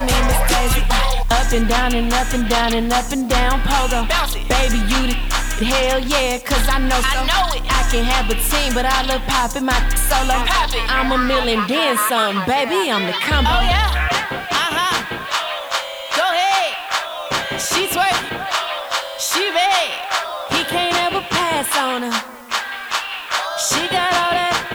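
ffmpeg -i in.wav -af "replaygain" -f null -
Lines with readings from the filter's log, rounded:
track_gain = -1.0 dB
track_peak = 0.339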